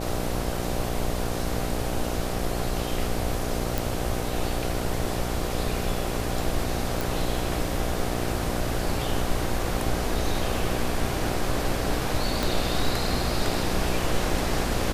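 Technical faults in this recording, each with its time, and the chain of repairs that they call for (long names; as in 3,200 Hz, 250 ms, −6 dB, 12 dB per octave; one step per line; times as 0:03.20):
mains buzz 60 Hz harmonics 13 −31 dBFS
0:03.78: click
0:07.01: click
0:12.43: click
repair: click removal
hum removal 60 Hz, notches 13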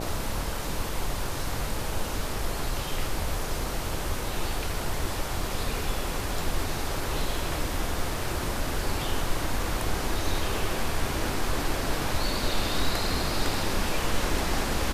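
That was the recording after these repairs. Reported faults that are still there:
0:12.43: click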